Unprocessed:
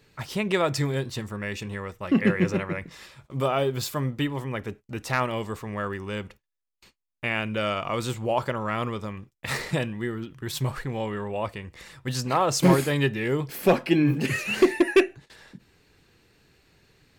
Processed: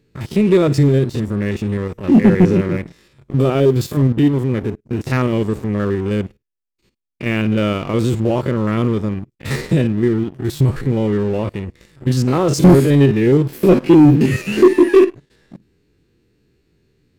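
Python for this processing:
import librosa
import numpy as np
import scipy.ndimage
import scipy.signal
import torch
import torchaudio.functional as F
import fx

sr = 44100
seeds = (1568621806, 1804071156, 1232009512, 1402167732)

y = fx.spec_steps(x, sr, hold_ms=50)
y = fx.low_shelf_res(y, sr, hz=520.0, db=9.5, q=1.5)
y = fx.leveller(y, sr, passes=2)
y = y * librosa.db_to_amplitude(-3.0)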